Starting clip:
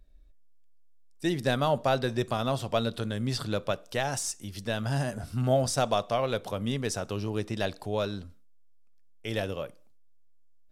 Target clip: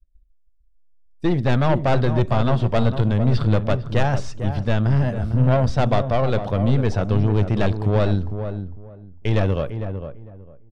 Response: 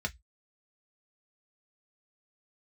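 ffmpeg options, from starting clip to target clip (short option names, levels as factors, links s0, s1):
-filter_complex "[0:a]agate=range=0.0224:threshold=0.00708:ratio=3:detection=peak,acrossover=split=4600[s0][s1];[s1]acompressor=threshold=0.00141:ratio=4:attack=1:release=60[s2];[s0][s2]amix=inputs=2:normalize=0,aemphasis=mode=reproduction:type=bsi,dynaudnorm=f=620:g=3:m=3.76,aeval=exprs='(tanh(5.01*val(0)+0.45)-tanh(0.45))/5.01':c=same,asplit=2[s3][s4];[s4]adelay=452,lowpass=f=1100:p=1,volume=0.398,asplit=2[s5][s6];[s6]adelay=452,lowpass=f=1100:p=1,volume=0.22,asplit=2[s7][s8];[s8]adelay=452,lowpass=f=1100:p=1,volume=0.22[s9];[s5][s7][s9]amix=inputs=3:normalize=0[s10];[s3][s10]amix=inputs=2:normalize=0"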